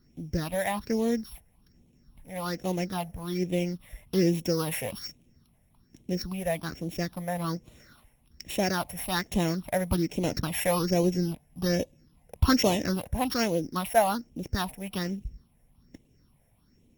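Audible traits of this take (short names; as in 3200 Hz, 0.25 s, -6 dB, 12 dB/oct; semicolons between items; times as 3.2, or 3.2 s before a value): a buzz of ramps at a fixed pitch in blocks of 8 samples; phasing stages 6, 1.2 Hz, lowest notch 320–1400 Hz; Opus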